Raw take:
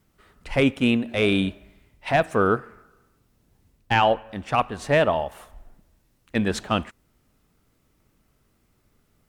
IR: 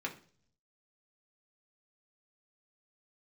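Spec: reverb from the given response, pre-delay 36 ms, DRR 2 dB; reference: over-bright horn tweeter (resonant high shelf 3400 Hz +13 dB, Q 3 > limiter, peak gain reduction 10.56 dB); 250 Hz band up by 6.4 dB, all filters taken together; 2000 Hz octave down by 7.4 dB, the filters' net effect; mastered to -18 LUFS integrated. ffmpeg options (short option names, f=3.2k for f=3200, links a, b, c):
-filter_complex "[0:a]equalizer=f=250:t=o:g=7.5,equalizer=f=2k:t=o:g=-3.5,asplit=2[a][b];[1:a]atrim=start_sample=2205,adelay=36[c];[b][c]afir=irnorm=-1:irlink=0,volume=-4.5dB[d];[a][d]amix=inputs=2:normalize=0,highshelf=f=3.4k:t=q:w=3:g=13,volume=5.5dB,alimiter=limit=-7.5dB:level=0:latency=1"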